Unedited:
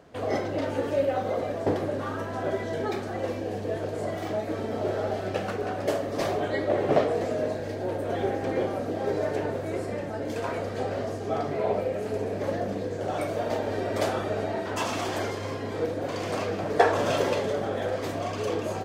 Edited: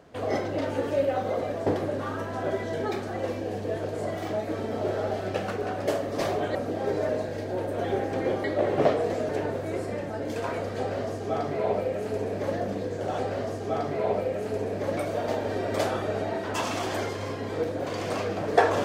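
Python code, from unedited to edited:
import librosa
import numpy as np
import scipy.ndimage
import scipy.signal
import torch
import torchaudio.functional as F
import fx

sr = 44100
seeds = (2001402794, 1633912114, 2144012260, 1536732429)

y = fx.edit(x, sr, fx.swap(start_s=6.55, length_s=0.85, other_s=8.75, other_length_s=0.54),
    fx.duplicate(start_s=10.79, length_s=1.78, to_s=13.19), tone=tone)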